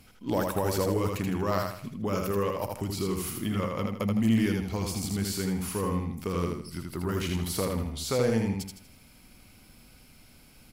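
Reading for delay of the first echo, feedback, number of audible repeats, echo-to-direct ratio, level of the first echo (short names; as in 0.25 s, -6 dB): 80 ms, 36%, 4, -3.0 dB, -3.5 dB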